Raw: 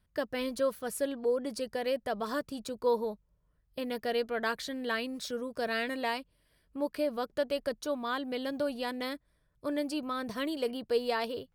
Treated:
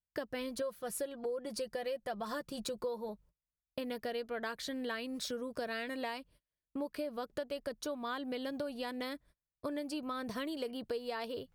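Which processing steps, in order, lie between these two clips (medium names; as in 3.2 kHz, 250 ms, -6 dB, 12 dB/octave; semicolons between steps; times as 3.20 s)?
gate -57 dBFS, range -30 dB; 0.61–3.09 s: comb 5.7 ms, depth 55%; compression 6:1, threshold -39 dBFS, peak gain reduction 16 dB; trim +3 dB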